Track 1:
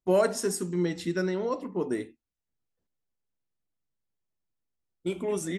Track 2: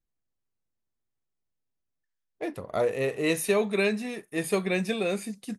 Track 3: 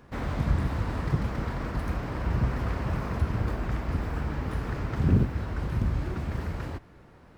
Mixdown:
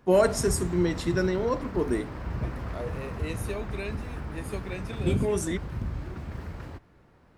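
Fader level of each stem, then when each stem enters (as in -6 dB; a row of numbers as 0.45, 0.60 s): +2.5, -11.0, -5.5 dB; 0.00, 0.00, 0.00 s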